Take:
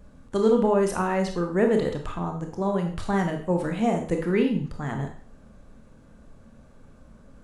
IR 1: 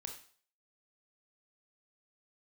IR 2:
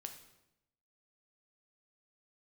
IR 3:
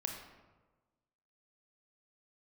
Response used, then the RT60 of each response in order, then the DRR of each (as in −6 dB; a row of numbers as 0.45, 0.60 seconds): 1; 0.45, 0.85, 1.3 seconds; 3.0, 5.0, 2.0 decibels